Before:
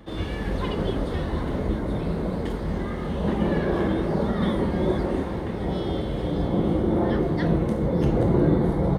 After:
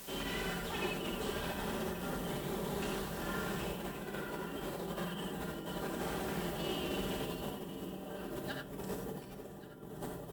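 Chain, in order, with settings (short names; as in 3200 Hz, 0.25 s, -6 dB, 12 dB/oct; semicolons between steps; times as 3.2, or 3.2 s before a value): added noise white -60 dBFS; negative-ratio compressor -27 dBFS, ratio -0.5; soft clip -22 dBFS, distortion -15 dB; RIAA curve recording; comb 4.4 ms, depth 50%; varispeed -13%; low shelf 75 Hz +7 dB; on a send: echo 1.128 s -18 dB; on the sum: non-linear reverb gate 0.11 s rising, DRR 3 dB; slew limiter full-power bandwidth 100 Hz; gain -7.5 dB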